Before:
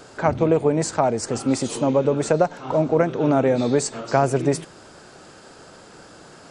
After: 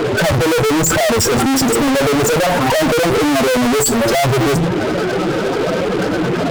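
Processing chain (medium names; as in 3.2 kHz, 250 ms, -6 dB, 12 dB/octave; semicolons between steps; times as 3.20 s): spectral contrast enhancement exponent 3.1; on a send at -17 dB: reverberation, pre-delay 3 ms; on the sum: valve stage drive 28 dB, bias 0.6; fuzz box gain 53 dB, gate -55 dBFS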